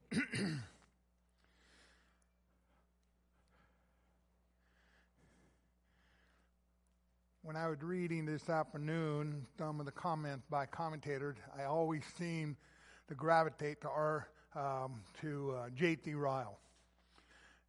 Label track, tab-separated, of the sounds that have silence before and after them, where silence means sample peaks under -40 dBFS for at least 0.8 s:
7.480000	16.480000	sound